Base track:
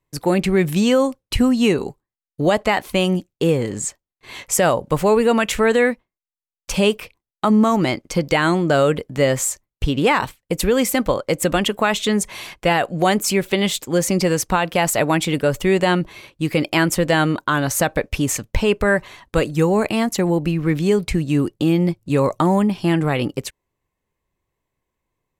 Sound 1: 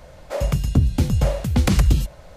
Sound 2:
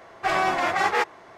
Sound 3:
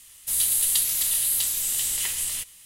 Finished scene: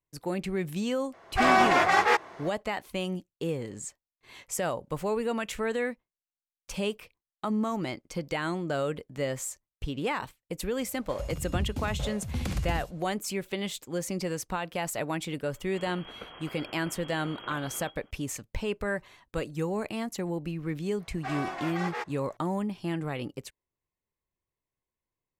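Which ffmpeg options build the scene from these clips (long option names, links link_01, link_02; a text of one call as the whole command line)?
ffmpeg -i bed.wav -i cue0.wav -i cue1.wav -i cue2.wav -filter_complex "[2:a]asplit=2[link_01][link_02];[0:a]volume=-14dB[link_03];[link_01]dynaudnorm=framelen=170:gausssize=3:maxgain=12.5dB[link_04];[1:a]aecho=1:1:56|69:0.299|0.473[link_05];[3:a]lowpass=frequency=2800:width_type=q:width=0.5098,lowpass=frequency=2800:width_type=q:width=0.6013,lowpass=frequency=2800:width_type=q:width=0.9,lowpass=frequency=2800:width_type=q:width=2.563,afreqshift=-3300[link_06];[link_04]atrim=end=1.37,asetpts=PTS-STARTPTS,volume=-7.5dB,afade=type=in:duration=0.004:curve=hsin,afade=type=out:start_time=1.366:duration=0.004:curve=hsin,adelay=1130[link_07];[link_05]atrim=end=2.36,asetpts=PTS-STARTPTS,volume=-15.5dB,afade=type=in:duration=0.004:curve=hsin,afade=type=out:start_time=2.356:duration=0.004:curve=hsin,adelay=10780[link_08];[link_06]atrim=end=2.65,asetpts=PTS-STARTPTS,volume=-3.5dB,afade=type=in:duration=0.004:curve=hsin,afade=type=out:start_time=2.646:duration=0.004:curve=hsin,adelay=15460[link_09];[link_02]atrim=end=1.37,asetpts=PTS-STARTPTS,volume=-12.5dB,afade=type=in:duration=0.004:curve=hsin,afade=type=out:start_time=1.366:duration=0.004:curve=hsin,adelay=926100S[link_10];[link_03][link_07][link_08][link_09][link_10]amix=inputs=5:normalize=0" out.wav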